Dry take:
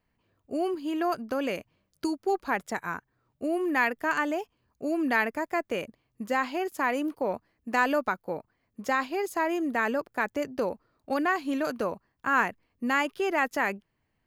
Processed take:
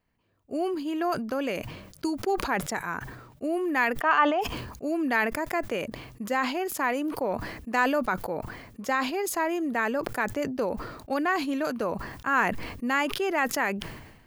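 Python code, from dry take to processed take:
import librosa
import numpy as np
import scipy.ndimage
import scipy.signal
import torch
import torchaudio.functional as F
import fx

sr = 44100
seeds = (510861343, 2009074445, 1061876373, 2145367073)

y = fx.cabinet(x, sr, low_hz=270.0, low_slope=12, high_hz=4900.0, hz=(290.0, 780.0, 1200.0, 3000.0, 4600.0), db=(-3, 10, 9, 6, -5), at=(4.0, 4.4), fade=0.02)
y = fx.sustainer(y, sr, db_per_s=54.0)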